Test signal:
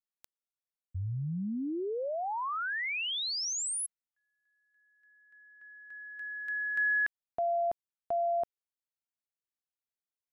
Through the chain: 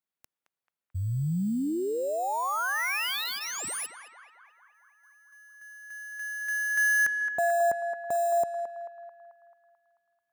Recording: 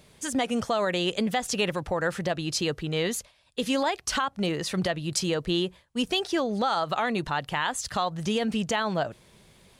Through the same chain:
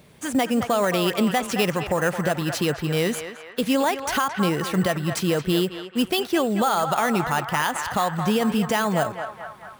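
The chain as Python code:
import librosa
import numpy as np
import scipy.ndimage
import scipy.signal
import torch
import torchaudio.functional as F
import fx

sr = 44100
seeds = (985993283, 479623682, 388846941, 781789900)

p1 = fx.bass_treble(x, sr, bass_db=6, treble_db=-6)
p2 = fx.notch(p1, sr, hz=5100.0, q=21.0)
p3 = fx.sample_hold(p2, sr, seeds[0], rate_hz=7900.0, jitter_pct=0)
p4 = p2 + (p3 * 10.0 ** (-3.5 / 20.0))
p5 = fx.highpass(p4, sr, hz=170.0, slope=6)
p6 = fx.high_shelf(p5, sr, hz=6300.0, db=7.0)
y = p6 + fx.echo_banded(p6, sr, ms=219, feedback_pct=66, hz=1300.0, wet_db=-6, dry=0)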